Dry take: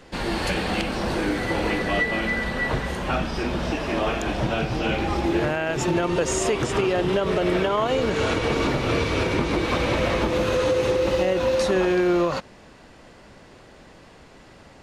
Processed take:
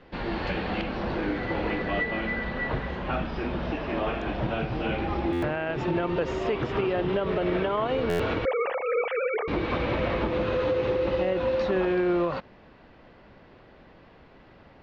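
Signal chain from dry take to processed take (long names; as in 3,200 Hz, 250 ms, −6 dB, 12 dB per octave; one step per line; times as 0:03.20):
0:08.45–0:09.48: three sine waves on the formant tracks
Bessel low-pass filter 2,800 Hz, order 6
buffer that repeats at 0:05.32/0:08.09, samples 512, times 8
level −4 dB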